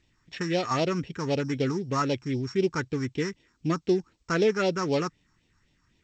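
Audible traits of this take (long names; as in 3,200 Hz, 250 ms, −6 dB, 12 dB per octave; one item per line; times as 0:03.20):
a buzz of ramps at a fixed pitch in blocks of 8 samples
phaser sweep stages 4, 3.9 Hz, lowest notch 550–1,300 Hz
G.722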